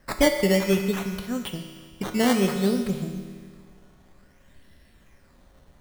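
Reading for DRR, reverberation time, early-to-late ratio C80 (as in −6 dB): 4.0 dB, 1.9 s, 7.0 dB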